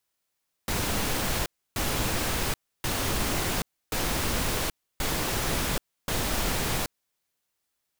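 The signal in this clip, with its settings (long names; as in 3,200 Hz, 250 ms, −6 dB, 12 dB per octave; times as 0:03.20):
noise bursts pink, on 0.78 s, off 0.30 s, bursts 6, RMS −27.5 dBFS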